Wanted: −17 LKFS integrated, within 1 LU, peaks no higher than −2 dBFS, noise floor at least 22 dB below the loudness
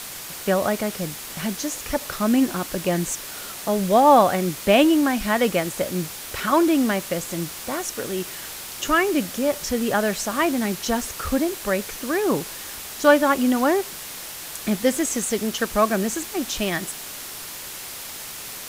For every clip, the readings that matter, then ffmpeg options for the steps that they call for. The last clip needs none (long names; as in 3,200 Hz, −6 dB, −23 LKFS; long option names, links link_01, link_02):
background noise floor −36 dBFS; target noise floor −45 dBFS; integrated loudness −23.0 LKFS; sample peak −3.0 dBFS; target loudness −17.0 LKFS
→ -af "afftdn=noise_reduction=9:noise_floor=-36"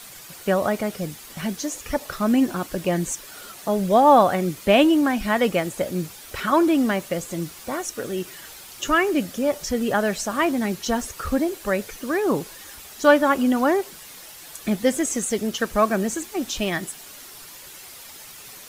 background noise floor −42 dBFS; target noise floor −45 dBFS
→ -af "afftdn=noise_reduction=6:noise_floor=-42"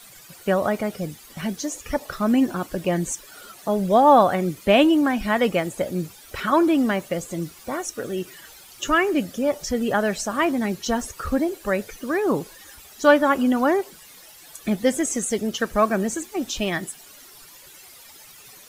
background noise floor −47 dBFS; integrated loudness −22.5 LKFS; sample peak −3.0 dBFS; target loudness −17.0 LKFS
→ -af "volume=5.5dB,alimiter=limit=-2dB:level=0:latency=1"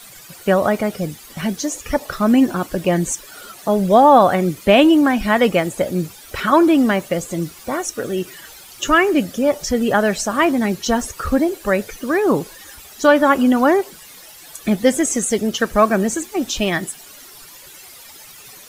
integrated loudness −17.5 LKFS; sample peak −2.0 dBFS; background noise floor −41 dBFS